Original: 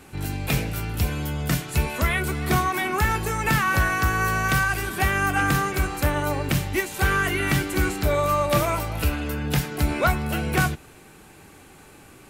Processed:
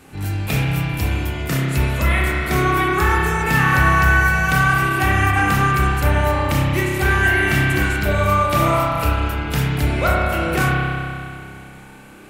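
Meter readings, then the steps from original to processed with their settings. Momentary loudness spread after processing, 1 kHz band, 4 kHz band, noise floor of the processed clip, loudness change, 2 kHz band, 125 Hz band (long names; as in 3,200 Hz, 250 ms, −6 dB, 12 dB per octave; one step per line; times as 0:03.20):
7 LU, +6.0 dB, +3.5 dB, −40 dBFS, +5.5 dB, +6.5 dB, +7.0 dB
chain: spring reverb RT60 2.4 s, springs 30 ms, chirp 70 ms, DRR −4.5 dB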